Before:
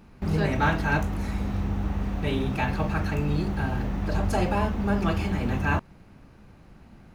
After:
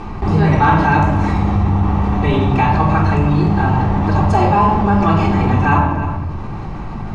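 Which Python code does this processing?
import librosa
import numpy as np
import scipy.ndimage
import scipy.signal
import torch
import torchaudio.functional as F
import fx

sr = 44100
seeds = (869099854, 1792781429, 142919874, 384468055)

p1 = scipy.signal.sosfilt(scipy.signal.butter(4, 8300.0, 'lowpass', fs=sr, output='sos'), x)
p2 = fx.peak_eq(p1, sr, hz=960.0, db=11.0, octaves=0.58)
p3 = fx.room_shoebox(p2, sr, seeds[0], volume_m3=1900.0, walls='furnished', distance_m=3.6)
p4 = np.clip(p3, -10.0 ** (-5.0 / 20.0), 10.0 ** (-5.0 / 20.0))
p5 = fx.high_shelf(p4, sr, hz=4600.0, db=-6.5)
p6 = fx.notch(p5, sr, hz=1500.0, q=16.0)
p7 = p6 + fx.echo_single(p6, sr, ms=312, db=-19.0, dry=0)
p8 = fx.env_flatten(p7, sr, amount_pct=50)
y = p8 * 10.0 ** (2.5 / 20.0)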